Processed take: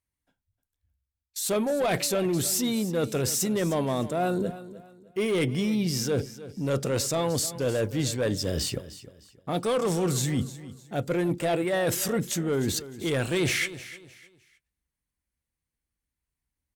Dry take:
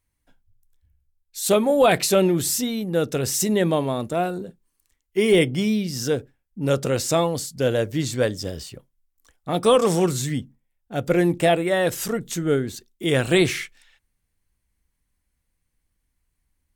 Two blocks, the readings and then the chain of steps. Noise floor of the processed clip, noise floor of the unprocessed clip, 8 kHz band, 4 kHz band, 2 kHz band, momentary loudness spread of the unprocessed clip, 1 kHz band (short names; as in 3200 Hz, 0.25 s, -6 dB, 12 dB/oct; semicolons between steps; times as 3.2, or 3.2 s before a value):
under -85 dBFS, -76 dBFS, -2.0 dB, -3.5 dB, -5.0 dB, 13 LU, -6.5 dB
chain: in parallel at -11.5 dB: hard clip -24 dBFS, distortion -5 dB; on the sum: HPF 44 Hz; gate -43 dBFS, range -19 dB; soft clip -12 dBFS, distortion -18 dB; reverse; compressor 6:1, threshold -32 dBFS, peak gain reduction 15.5 dB; reverse; feedback echo 0.306 s, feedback 30%, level -15.5 dB; gain +7 dB